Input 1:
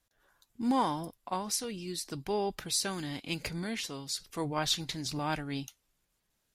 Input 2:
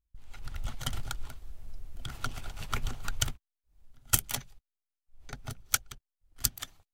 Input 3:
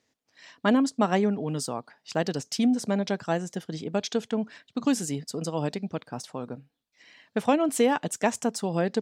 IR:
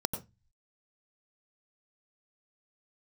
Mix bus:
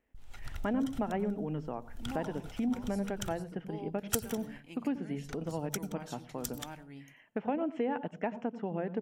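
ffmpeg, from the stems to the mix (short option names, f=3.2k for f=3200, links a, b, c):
-filter_complex "[0:a]adelay=1400,volume=-16.5dB,asplit=2[a][b];[b]volume=-13.5dB[c];[1:a]volume=-2dB,asplit=2[d][e];[e]volume=-22dB[f];[2:a]lowpass=f=3k:w=0.5412,lowpass=f=3k:w=1.3066,volume=-6dB,asplit=3[g][h][i];[h]volume=-19dB[j];[i]apad=whole_len=305811[k];[d][k]sidechaincompress=threshold=-48dB:ratio=5:attack=7.8:release=130[l];[a][g]amix=inputs=2:normalize=0,asuperstop=centerf=4100:order=12:qfactor=2.4,acompressor=threshold=-34dB:ratio=6,volume=0dB[m];[3:a]atrim=start_sample=2205[n];[c][f][j]amix=inputs=3:normalize=0[o];[o][n]afir=irnorm=-1:irlink=0[p];[l][m][p]amix=inputs=3:normalize=0"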